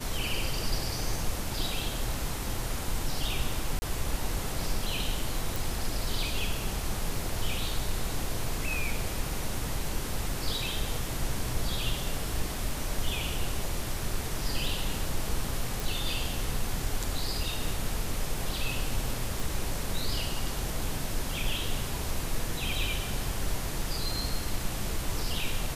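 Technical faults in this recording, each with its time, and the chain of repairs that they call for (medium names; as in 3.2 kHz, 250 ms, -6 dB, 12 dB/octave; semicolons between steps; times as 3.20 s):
3.79–3.82 s: dropout 30 ms
5.56 s: pop
15.80 s: pop
19.40 s: pop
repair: de-click; interpolate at 3.79 s, 30 ms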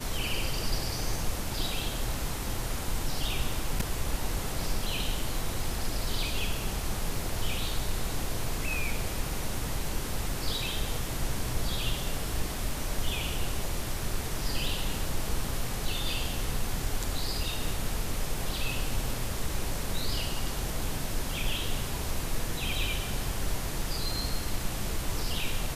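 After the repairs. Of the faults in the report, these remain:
19.40 s: pop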